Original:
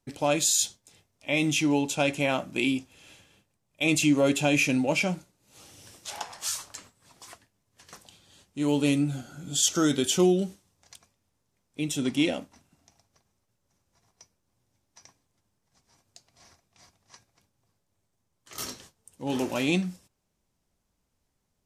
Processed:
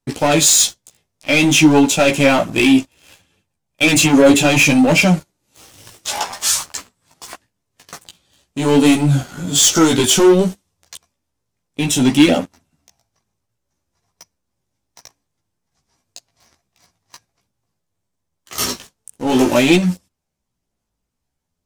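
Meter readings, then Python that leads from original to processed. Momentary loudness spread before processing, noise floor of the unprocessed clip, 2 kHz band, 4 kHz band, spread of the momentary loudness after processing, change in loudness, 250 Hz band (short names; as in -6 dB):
15 LU, -77 dBFS, +12.5 dB, +13.0 dB, 14 LU, +12.5 dB, +12.5 dB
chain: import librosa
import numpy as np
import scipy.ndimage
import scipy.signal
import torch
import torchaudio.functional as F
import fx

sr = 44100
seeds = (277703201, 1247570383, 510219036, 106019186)

y = fx.leveller(x, sr, passes=3)
y = fx.chorus_voices(y, sr, voices=2, hz=0.6, base_ms=15, depth_ms=3.7, mix_pct=45)
y = F.gain(torch.from_numpy(y), 7.5).numpy()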